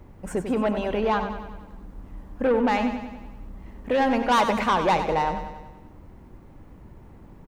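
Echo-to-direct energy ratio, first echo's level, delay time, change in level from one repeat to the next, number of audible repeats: -7.5 dB, -9.0 dB, 95 ms, -5.0 dB, 6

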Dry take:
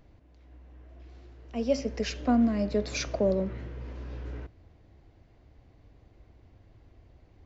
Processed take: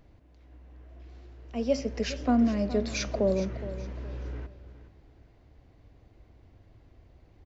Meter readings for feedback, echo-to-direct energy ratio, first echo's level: 31%, -13.5 dB, -14.0 dB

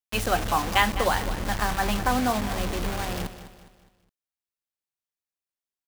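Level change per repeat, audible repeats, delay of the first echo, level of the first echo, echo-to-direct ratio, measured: -8.0 dB, 3, 206 ms, -13.0 dB, -12.0 dB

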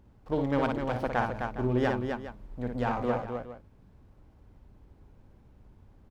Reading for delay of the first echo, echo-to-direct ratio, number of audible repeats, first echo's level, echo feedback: 57 ms, -2.0 dB, 3, -5.0 dB, no regular repeats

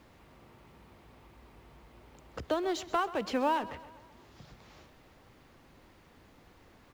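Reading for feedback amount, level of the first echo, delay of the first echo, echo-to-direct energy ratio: 56%, -17.0 dB, 131 ms, -15.5 dB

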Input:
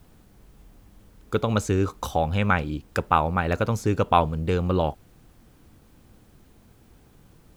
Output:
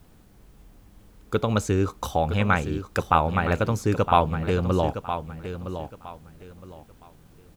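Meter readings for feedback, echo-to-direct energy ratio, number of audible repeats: 26%, -9.5 dB, 3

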